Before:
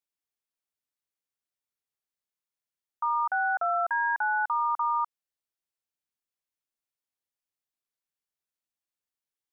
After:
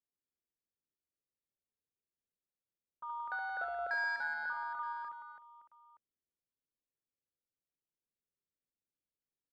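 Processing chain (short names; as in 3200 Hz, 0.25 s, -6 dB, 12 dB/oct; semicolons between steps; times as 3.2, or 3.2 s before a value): low-pass opened by the level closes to 630 Hz, open at -24.5 dBFS; band shelf 980 Hz -16 dB 1.2 oct; soft clip -29.5 dBFS, distortion -20 dB; on a send: reverse bouncing-ball echo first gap 70 ms, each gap 1.5×, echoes 5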